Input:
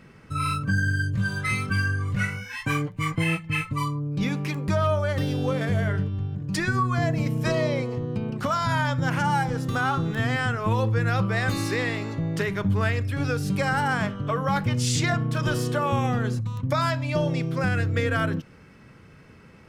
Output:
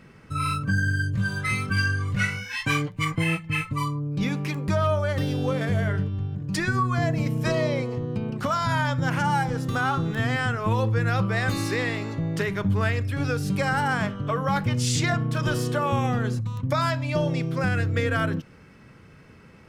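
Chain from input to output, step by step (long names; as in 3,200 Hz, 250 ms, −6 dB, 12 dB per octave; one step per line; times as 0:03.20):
0:01.76–0:03.05: dynamic equaliser 4,000 Hz, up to +8 dB, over −46 dBFS, Q 0.78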